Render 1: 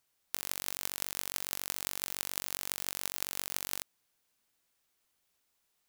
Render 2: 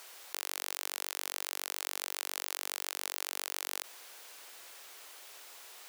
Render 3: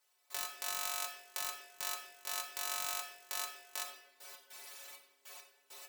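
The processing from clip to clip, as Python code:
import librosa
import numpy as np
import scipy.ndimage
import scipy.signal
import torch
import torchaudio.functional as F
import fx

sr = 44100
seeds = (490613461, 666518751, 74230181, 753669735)

y1 = scipy.signal.sosfilt(scipy.signal.butter(4, 390.0, 'highpass', fs=sr, output='sos'), x)
y1 = fx.high_shelf(y1, sr, hz=6100.0, db=-5.5)
y1 = fx.env_flatten(y1, sr, amount_pct=70)
y1 = y1 * 10.0 ** (-1.0 / 20.0)
y2 = fx.step_gate(y1, sr, bpm=100, pattern='..x.xxx..x..x', floor_db=-24.0, edge_ms=4.5)
y2 = fx.stiff_resonator(y2, sr, f0_hz=130.0, decay_s=0.28, stiffness=0.008)
y2 = fx.room_shoebox(y2, sr, seeds[0], volume_m3=550.0, walls='mixed', distance_m=0.87)
y2 = y2 * 10.0 ** (9.5 / 20.0)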